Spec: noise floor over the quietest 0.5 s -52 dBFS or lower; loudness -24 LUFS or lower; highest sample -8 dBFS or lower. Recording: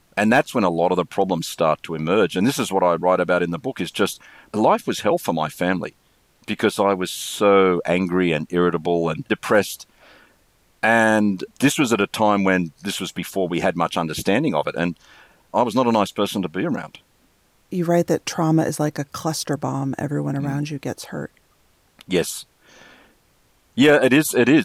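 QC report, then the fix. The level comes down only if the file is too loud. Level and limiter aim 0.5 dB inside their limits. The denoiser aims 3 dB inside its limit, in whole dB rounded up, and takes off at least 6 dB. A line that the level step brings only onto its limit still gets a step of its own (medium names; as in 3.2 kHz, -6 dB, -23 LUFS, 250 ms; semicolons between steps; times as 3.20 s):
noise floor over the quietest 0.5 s -60 dBFS: pass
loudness -20.5 LUFS: fail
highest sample -5.0 dBFS: fail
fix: trim -4 dB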